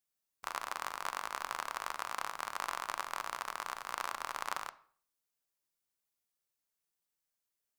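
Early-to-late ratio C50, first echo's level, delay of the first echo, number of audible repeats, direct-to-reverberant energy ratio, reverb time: 17.5 dB, no echo audible, no echo audible, no echo audible, 11.5 dB, 0.50 s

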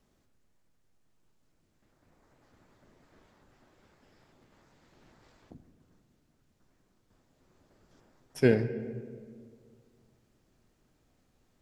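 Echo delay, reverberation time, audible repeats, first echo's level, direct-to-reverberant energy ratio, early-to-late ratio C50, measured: no echo audible, 1.9 s, no echo audible, no echo audible, 11.0 dB, 12.5 dB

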